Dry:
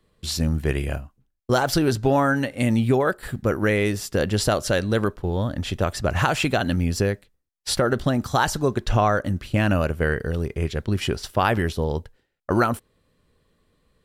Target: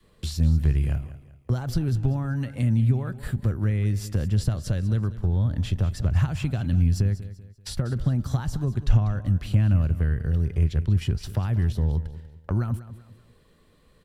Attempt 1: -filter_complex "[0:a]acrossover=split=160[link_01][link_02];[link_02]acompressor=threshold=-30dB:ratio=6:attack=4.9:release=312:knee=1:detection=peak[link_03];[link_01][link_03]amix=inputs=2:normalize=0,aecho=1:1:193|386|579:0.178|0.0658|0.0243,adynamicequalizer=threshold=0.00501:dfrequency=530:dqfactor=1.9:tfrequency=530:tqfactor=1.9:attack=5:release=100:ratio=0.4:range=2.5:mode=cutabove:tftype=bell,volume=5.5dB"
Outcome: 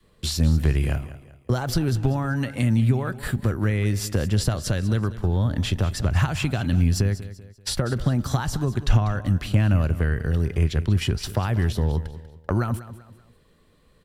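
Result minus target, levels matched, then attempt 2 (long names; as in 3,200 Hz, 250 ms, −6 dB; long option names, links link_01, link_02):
downward compressor: peak gain reduction −9 dB
-filter_complex "[0:a]acrossover=split=160[link_01][link_02];[link_02]acompressor=threshold=-41dB:ratio=6:attack=4.9:release=312:knee=1:detection=peak[link_03];[link_01][link_03]amix=inputs=2:normalize=0,aecho=1:1:193|386|579:0.178|0.0658|0.0243,adynamicequalizer=threshold=0.00501:dfrequency=530:dqfactor=1.9:tfrequency=530:tqfactor=1.9:attack=5:release=100:ratio=0.4:range=2.5:mode=cutabove:tftype=bell,volume=5.5dB"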